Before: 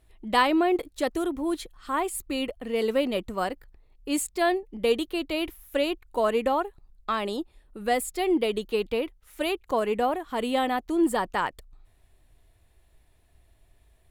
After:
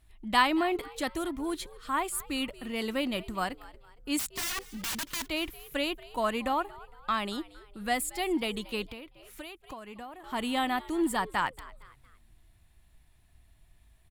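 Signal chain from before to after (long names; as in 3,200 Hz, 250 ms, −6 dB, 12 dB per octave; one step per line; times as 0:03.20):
0:04.19–0:05.28: wrap-around overflow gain 28 dB
parametric band 470 Hz −12 dB 0.92 octaves
echo with shifted repeats 230 ms, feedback 41%, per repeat +100 Hz, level −20 dB
0:08.85–0:10.24: downward compressor 8 to 1, threshold −41 dBFS, peak gain reduction 15.5 dB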